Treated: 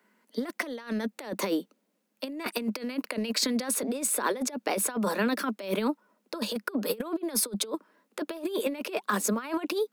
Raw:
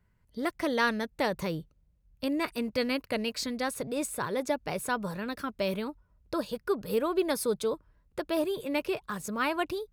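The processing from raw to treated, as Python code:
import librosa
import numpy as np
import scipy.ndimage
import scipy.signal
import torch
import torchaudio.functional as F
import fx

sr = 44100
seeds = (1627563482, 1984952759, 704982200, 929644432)

y = scipy.signal.sosfilt(scipy.signal.butter(16, 200.0, 'highpass', fs=sr, output='sos'), x)
y = fx.over_compress(y, sr, threshold_db=-35.0, ratio=-0.5)
y = y * librosa.db_to_amplitude(6.0)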